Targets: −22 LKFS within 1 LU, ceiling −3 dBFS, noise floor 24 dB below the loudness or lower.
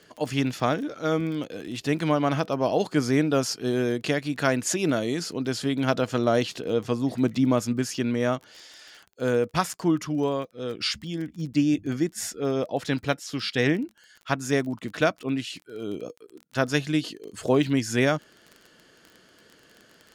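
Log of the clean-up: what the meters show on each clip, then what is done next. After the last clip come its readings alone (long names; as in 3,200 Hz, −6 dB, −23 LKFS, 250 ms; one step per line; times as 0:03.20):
crackle rate 21 per second; integrated loudness −26.0 LKFS; sample peak −8.5 dBFS; target loudness −22.0 LKFS
→ click removal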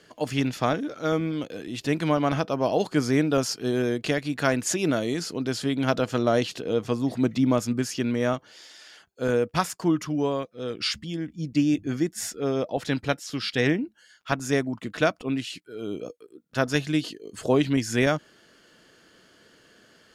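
crackle rate 0 per second; integrated loudness −26.0 LKFS; sample peak −8.5 dBFS; target loudness −22.0 LKFS
→ level +4 dB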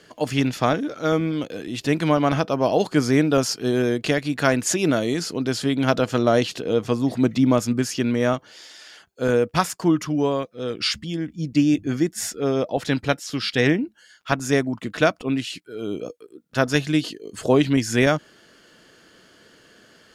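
integrated loudness −22.0 LKFS; sample peak −4.5 dBFS; background noise floor −55 dBFS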